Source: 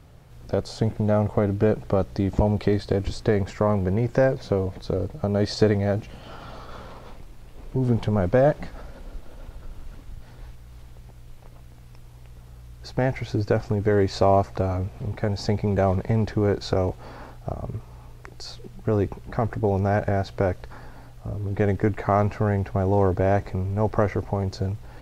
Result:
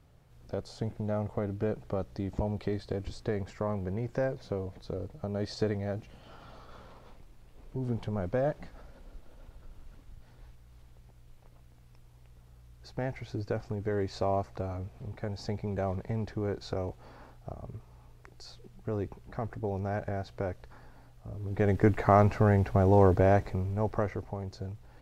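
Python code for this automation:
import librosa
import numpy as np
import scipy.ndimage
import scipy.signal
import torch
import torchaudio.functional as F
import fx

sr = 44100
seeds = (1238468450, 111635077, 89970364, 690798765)

y = fx.gain(x, sr, db=fx.line((21.27, -11.0), (21.87, -1.0), (23.14, -1.0), (24.39, -12.0)))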